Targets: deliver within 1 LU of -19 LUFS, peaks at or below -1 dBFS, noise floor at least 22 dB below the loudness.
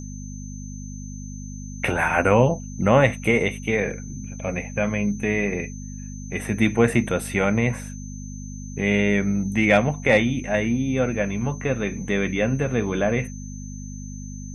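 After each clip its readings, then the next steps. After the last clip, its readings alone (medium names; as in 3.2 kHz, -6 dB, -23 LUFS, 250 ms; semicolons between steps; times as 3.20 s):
hum 50 Hz; highest harmonic 250 Hz; hum level -32 dBFS; steady tone 6.2 kHz; tone level -43 dBFS; loudness -22.5 LUFS; peak level -3.0 dBFS; loudness target -19.0 LUFS
-> de-hum 50 Hz, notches 5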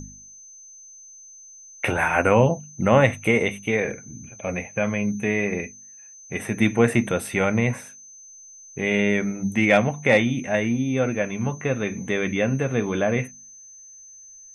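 hum not found; steady tone 6.2 kHz; tone level -43 dBFS
-> band-stop 6.2 kHz, Q 30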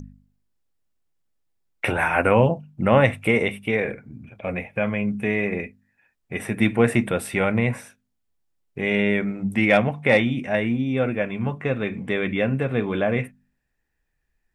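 steady tone not found; loudness -22.5 LUFS; peak level -2.5 dBFS; loudness target -19.0 LUFS
-> trim +3.5 dB; peak limiter -1 dBFS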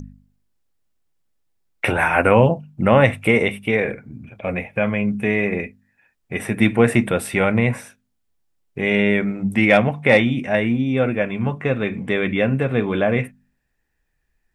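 loudness -19.0 LUFS; peak level -1.0 dBFS; noise floor -71 dBFS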